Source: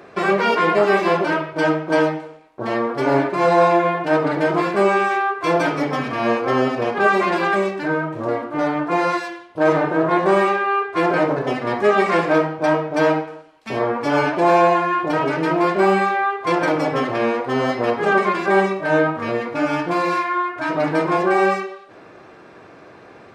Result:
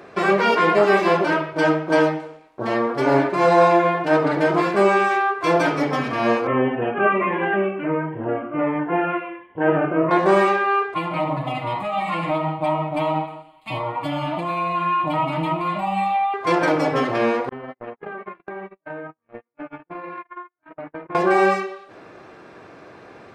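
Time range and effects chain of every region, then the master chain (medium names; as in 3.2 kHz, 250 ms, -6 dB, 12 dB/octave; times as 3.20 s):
6.47–10.11 s: steep low-pass 3 kHz 72 dB/octave + Shepard-style phaser falling 1.4 Hz
10.94–16.34 s: compression, threshold -18 dBFS + static phaser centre 1.6 kHz, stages 6 + comb 6.4 ms, depth 97%
17.49–21.15 s: gate -19 dBFS, range -57 dB + low-pass 2.6 kHz 24 dB/octave + compression 16:1, threshold -29 dBFS
whole clip: none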